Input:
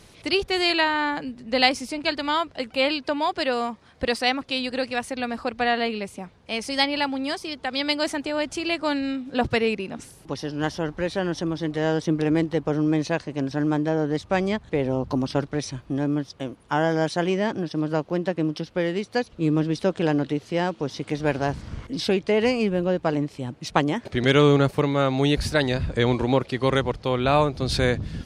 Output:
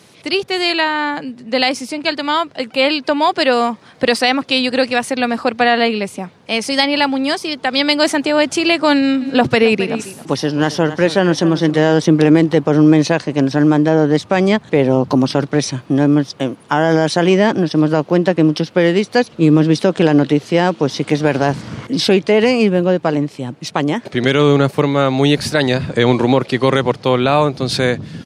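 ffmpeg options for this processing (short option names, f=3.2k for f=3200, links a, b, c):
-filter_complex "[0:a]asplit=3[a][b][c];[a]afade=t=out:st=9.2:d=0.02[d];[b]aecho=1:1:268:0.168,afade=t=in:st=9.2:d=0.02,afade=t=out:st=11.92:d=0.02[e];[c]afade=t=in:st=11.92:d=0.02[f];[d][e][f]amix=inputs=3:normalize=0,highpass=f=120:w=0.5412,highpass=f=120:w=1.3066,dynaudnorm=f=230:g=11:m=11.5dB,alimiter=level_in=6dB:limit=-1dB:release=50:level=0:latency=1,volume=-1dB"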